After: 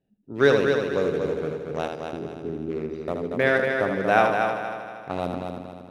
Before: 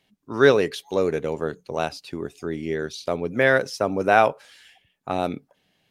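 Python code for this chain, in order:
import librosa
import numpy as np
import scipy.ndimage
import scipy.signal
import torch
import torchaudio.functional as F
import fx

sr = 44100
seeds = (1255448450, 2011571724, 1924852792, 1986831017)

y = fx.wiener(x, sr, points=41)
y = fx.echo_heads(y, sr, ms=78, heads='first and third', feedback_pct=59, wet_db=-6)
y = F.gain(torch.from_numpy(y), -2.5).numpy()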